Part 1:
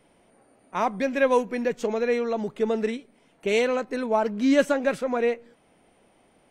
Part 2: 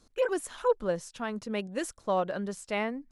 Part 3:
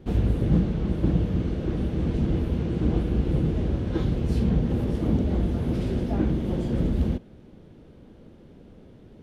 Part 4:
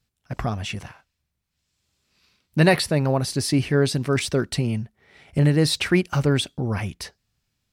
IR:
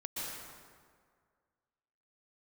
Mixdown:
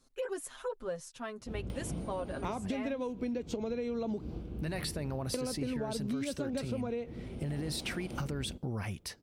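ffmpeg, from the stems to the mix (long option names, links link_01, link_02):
-filter_complex "[0:a]acompressor=mode=upward:threshold=-34dB:ratio=2.5,equalizer=frequency=250:width_type=o:width=1:gain=11,equalizer=frequency=500:width_type=o:width=1:gain=3,equalizer=frequency=4000:width_type=o:width=1:gain=7,adelay=1700,volume=-5dB,asplit=3[link_01][link_02][link_03];[link_01]atrim=end=4.22,asetpts=PTS-STARTPTS,afade=type=out:start_time=4.216:duration=0.004:curve=hsin[link_04];[link_02]atrim=start=4.22:end=5.34,asetpts=PTS-STARTPTS,volume=0[link_05];[link_03]atrim=start=5.34,asetpts=PTS-STARTPTS,afade=type=in:duration=0.004:curve=hsin[link_06];[link_04][link_05][link_06]concat=n=3:v=0:a=1[link_07];[1:a]aecho=1:1:7.5:0.78,volume=-8dB,asplit=2[link_08][link_09];[2:a]highshelf=frequency=4800:gain=-5.5,adelay=1400,volume=-17dB[link_10];[3:a]adelay=2050,volume=-8.5dB[link_11];[link_09]apad=whole_len=431137[link_12];[link_11][link_12]sidechaincompress=threshold=-51dB:ratio=8:attack=16:release=178[link_13];[link_07][link_10]amix=inputs=2:normalize=0,equalizer=frequency=1800:width=6.3:gain=-10,acompressor=threshold=-26dB:ratio=6,volume=0dB[link_14];[link_08][link_13]amix=inputs=2:normalize=0,highshelf=frequency=9500:gain=7,alimiter=level_in=1.5dB:limit=-24dB:level=0:latency=1:release=29,volume=-1.5dB,volume=0dB[link_15];[link_14][link_15]amix=inputs=2:normalize=0,acompressor=threshold=-32dB:ratio=6"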